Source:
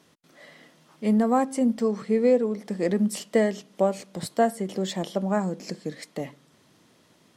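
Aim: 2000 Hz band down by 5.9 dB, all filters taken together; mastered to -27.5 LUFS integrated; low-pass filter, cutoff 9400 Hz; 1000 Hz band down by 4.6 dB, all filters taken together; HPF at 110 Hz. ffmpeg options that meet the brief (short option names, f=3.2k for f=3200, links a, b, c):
-af "highpass=110,lowpass=9.4k,equalizer=f=1k:t=o:g=-6.5,equalizer=f=2k:t=o:g=-5,volume=-0.5dB"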